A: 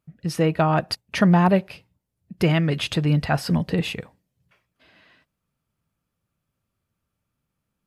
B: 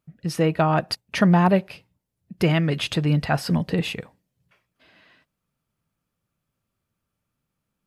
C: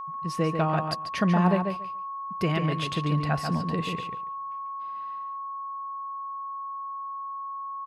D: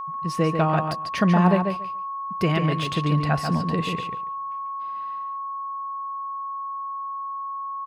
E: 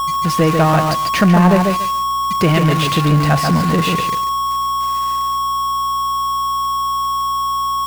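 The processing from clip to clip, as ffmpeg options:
ffmpeg -i in.wav -af "equalizer=frequency=72:width=1.2:gain=-3.5" out.wav
ffmpeg -i in.wav -filter_complex "[0:a]lowpass=11000,aeval=exprs='val(0)+0.0447*sin(2*PI*1100*n/s)':channel_layout=same,asplit=2[link_01][link_02];[link_02]adelay=142,lowpass=frequency=4300:poles=1,volume=-5.5dB,asplit=2[link_03][link_04];[link_04]adelay=142,lowpass=frequency=4300:poles=1,volume=0.16,asplit=2[link_05][link_06];[link_06]adelay=142,lowpass=frequency=4300:poles=1,volume=0.16[link_07];[link_03][link_05][link_07]amix=inputs=3:normalize=0[link_08];[link_01][link_08]amix=inputs=2:normalize=0,volume=-6.5dB" out.wav
ffmpeg -i in.wav -af "deesser=0.85,volume=4dB" out.wav
ffmpeg -i in.wav -af "aeval=exprs='val(0)+0.5*0.0531*sgn(val(0))':channel_layout=same,acontrast=83,aeval=exprs='val(0)+0.01*(sin(2*PI*60*n/s)+sin(2*PI*2*60*n/s)/2+sin(2*PI*3*60*n/s)/3+sin(2*PI*4*60*n/s)/4+sin(2*PI*5*60*n/s)/5)':channel_layout=same" out.wav

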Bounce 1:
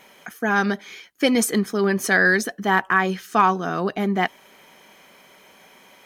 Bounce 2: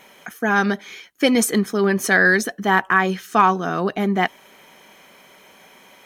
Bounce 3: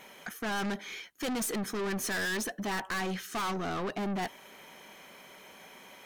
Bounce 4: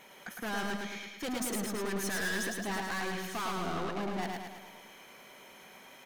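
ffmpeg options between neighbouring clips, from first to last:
ffmpeg -i in.wav -af "bandreject=frequency=4800:width=16,volume=2dB" out.wav
ffmpeg -i in.wav -af "aeval=exprs='(tanh(25.1*val(0)+0.1)-tanh(0.1))/25.1':channel_layout=same,volume=-3dB" out.wav
ffmpeg -i in.wav -af "aecho=1:1:108|216|324|432|540|648|756:0.708|0.382|0.206|0.111|0.0602|0.0325|0.0176,volume=-3.5dB" out.wav

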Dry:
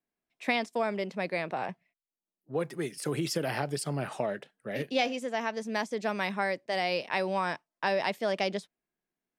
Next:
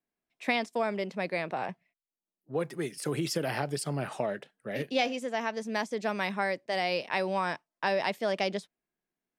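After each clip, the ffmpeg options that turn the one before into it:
ffmpeg -i in.wav -af anull out.wav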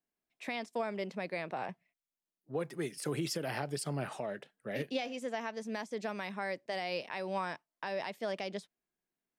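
ffmpeg -i in.wav -af "alimiter=limit=-22dB:level=0:latency=1:release=265,volume=-3dB" out.wav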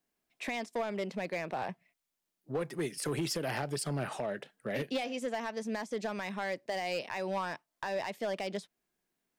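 ffmpeg -i in.wav -filter_complex "[0:a]asplit=2[link_01][link_02];[link_02]acompressor=threshold=-45dB:ratio=6,volume=2.5dB[link_03];[link_01][link_03]amix=inputs=2:normalize=0,asoftclip=type=hard:threshold=-27.5dB" out.wav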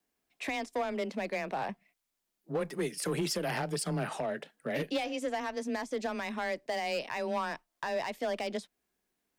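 ffmpeg -i in.wav -af "afreqshift=18,volume=1.5dB" out.wav

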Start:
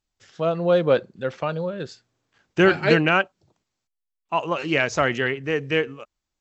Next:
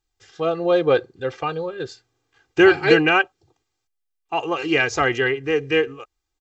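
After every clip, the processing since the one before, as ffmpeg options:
ffmpeg -i in.wav -af "aecho=1:1:2.5:0.86" out.wav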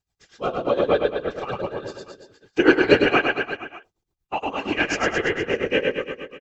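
ffmpeg -i in.wav -filter_complex "[0:a]afftfilt=real='hypot(re,im)*cos(2*PI*random(0))':imag='hypot(re,im)*sin(2*PI*random(1))':win_size=512:overlap=0.75,asplit=2[link_01][link_02];[link_02]aecho=0:1:100|210|331|464.1|610.5:0.631|0.398|0.251|0.158|0.1[link_03];[link_01][link_03]amix=inputs=2:normalize=0,tremolo=f=8.5:d=0.83,volume=5.5dB" out.wav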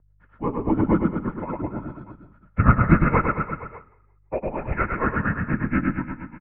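ffmpeg -i in.wav -filter_complex "[0:a]asplit=4[link_01][link_02][link_03][link_04];[link_02]adelay=170,afreqshift=-30,volume=-20dB[link_05];[link_03]adelay=340,afreqshift=-60,volume=-29.4dB[link_06];[link_04]adelay=510,afreqshift=-90,volume=-38.7dB[link_07];[link_01][link_05][link_06][link_07]amix=inputs=4:normalize=0,aeval=exprs='val(0)+0.00708*(sin(2*PI*50*n/s)+sin(2*PI*2*50*n/s)/2+sin(2*PI*3*50*n/s)/3+sin(2*PI*4*50*n/s)/4+sin(2*PI*5*50*n/s)/5)':channel_layout=same,highpass=frequency=200:width_type=q:width=0.5412,highpass=frequency=200:width_type=q:width=1.307,lowpass=frequency=2100:width_type=q:width=0.5176,lowpass=frequency=2100:width_type=q:width=0.7071,lowpass=frequency=2100:width_type=q:width=1.932,afreqshift=-250" out.wav

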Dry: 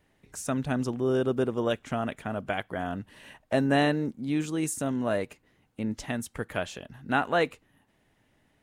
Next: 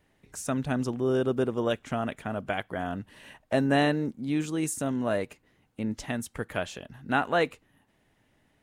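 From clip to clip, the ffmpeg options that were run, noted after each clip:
ffmpeg -i in.wav -af anull out.wav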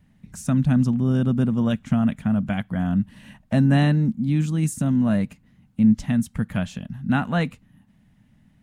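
ffmpeg -i in.wav -af "lowshelf=frequency=280:width_type=q:width=3:gain=10.5" out.wav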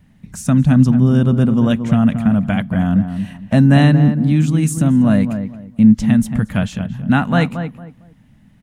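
ffmpeg -i in.wav -filter_complex "[0:a]asplit=2[link_01][link_02];[link_02]adelay=227,lowpass=frequency=1300:poles=1,volume=-8dB,asplit=2[link_03][link_04];[link_04]adelay=227,lowpass=frequency=1300:poles=1,volume=0.26,asplit=2[link_05][link_06];[link_06]adelay=227,lowpass=frequency=1300:poles=1,volume=0.26[link_07];[link_01][link_03][link_05][link_07]amix=inputs=4:normalize=0,volume=7dB" out.wav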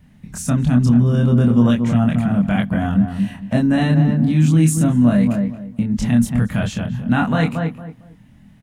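ffmpeg -i in.wav -filter_complex "[0:a]alimiter=limit=-10dB:level=0:latency=1:release=16,asplit=2[link_01][link_02];[link_02]adelay=25,volume=-2.5dB[link_03];[link_01][link_03]amix=inputs=2:normalize=0" out.wav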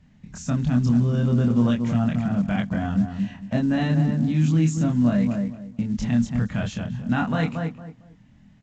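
ffmpeg -i in.wav -af "volume=-6dB" -ar 16000 -c:a pcm_mulaw out.wav

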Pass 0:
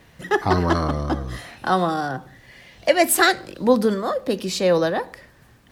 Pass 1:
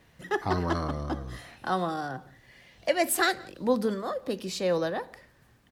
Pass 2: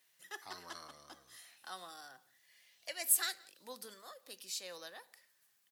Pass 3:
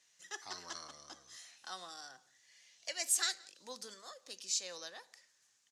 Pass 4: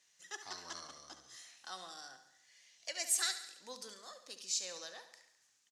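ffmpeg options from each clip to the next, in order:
ffmpeg -i in.wav -filter_complex "[0:a]asplit=2[link_01][link_02];[link_02]adelay=174.9,volume=-24dB,highshelf=frequency=4000:gain=-3.94[link_03];[link_01][link_03]amix=inputs=2:normalize=0,volume=-8.5dB" out.wav
ffmpeg -i in.wav -af "aderivative,volume=-2dB" out.wav
ffmpeg -i in.wav -af "lowpass=frequency=6600:width_type=q:width=3.2" out.wav
ffmpeg -i in.wav -af "aecho=1:1:70|140|210|280|350|420:0.266|0.149|0.0834|0.0467|0.0262|0.0147,volume=-1dB" out.wav

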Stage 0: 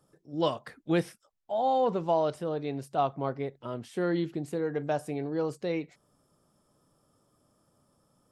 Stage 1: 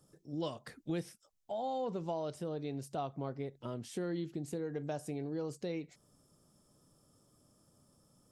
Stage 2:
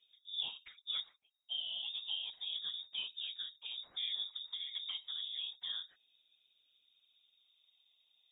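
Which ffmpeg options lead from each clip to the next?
ffmpeg -i in.wav -af "equalizer=frequency=1200:width=0.41:gain=-7,acompressor=threshold=-41dB:ratio=2.5,equalizer=frequency=6400:width=1.4:gain=4,volume=2.5dB" out.wav
ffmpeg -i in.wav -af "afftfilt=real='re*pow(10,6/40*sin(2*PI*(1.4*log(max(b,1)*sr/1024/100)/log(2)-(0.31)*(pts-256)/sr)))':imag='im*pow(10,6/40*sin(2*PI*(1.4*log(max(b,1)*sr/1024/100)/log(2)-(0.31)*(pts-256)/sr)))':win_size=1024:overlap=0.75,afftfilt=real='hypot(re,im)*cos(2*PI*random(0))':imag='hypot(re,im)*sin(2*PI*random(1))':win_size=512:overlap=0.75,lowpass=frequency=3200:width_type=q:width=0.5098,lowpass=frequency=3200:width_type=q:width=0.6013,lowpass=frequency=3200:width_type=q:width=0.9,lowpass=frequency=3200:width_type=q:width=2.563,afreqshift=-3800,volume=2dB" out.wav

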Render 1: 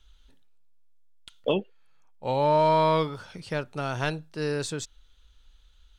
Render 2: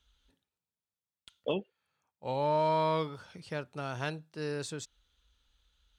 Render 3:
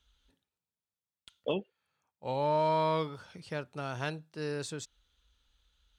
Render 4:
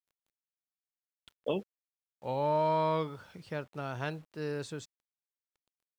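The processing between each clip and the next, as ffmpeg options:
ffmpeg -i in.wav -af "highpass=56,volume=-7dB" out.wav
ffmpeg -i in.wav -af anull out.wav
ffmpeg -i in.wav -af "acrusher=bits=9:mix=0:aa=0.000001,highshelf=frequency=3800:gain=-8.5" out.wav

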